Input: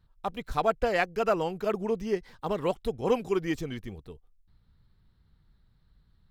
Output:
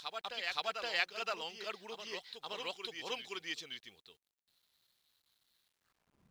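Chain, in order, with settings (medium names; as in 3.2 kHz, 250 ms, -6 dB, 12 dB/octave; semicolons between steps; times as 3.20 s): reverse echo 520 ms -5.5 dB; band-pass sweep 3.9 kHz -> 230 Hz, 5.66–6.27 s; companded quantiser 8-bit; trim +7 dB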